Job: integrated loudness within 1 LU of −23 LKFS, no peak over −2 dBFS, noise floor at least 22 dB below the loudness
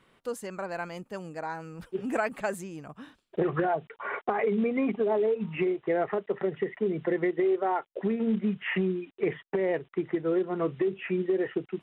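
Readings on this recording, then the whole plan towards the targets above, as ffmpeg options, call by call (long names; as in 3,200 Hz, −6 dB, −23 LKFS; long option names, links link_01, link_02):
integrated loudness −30.0 LKFS; sample peak −13.5 dBFS; target loudness −23.0 LKFS
→ -af "volume=7dB"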